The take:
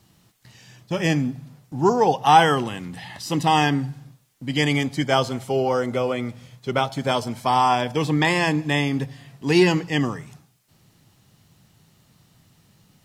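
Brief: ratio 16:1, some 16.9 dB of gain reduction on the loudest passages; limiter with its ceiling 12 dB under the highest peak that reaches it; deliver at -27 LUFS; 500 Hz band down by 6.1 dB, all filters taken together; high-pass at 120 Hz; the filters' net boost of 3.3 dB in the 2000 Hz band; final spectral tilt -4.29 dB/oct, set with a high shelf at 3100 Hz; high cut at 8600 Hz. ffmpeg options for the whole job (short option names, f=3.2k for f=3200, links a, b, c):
-af "highpass=120,lowpass=8.6k,equalizer=f=500:t=o:g=-8.5,equalizer=f=2k:t=o:g=5.5,highshelf=f=3.1k:g=-3,acompressor=threshold=-27dB:ratio=16,volume=10dB,alimiter=limit=-16.5dB:level=0:latency=1"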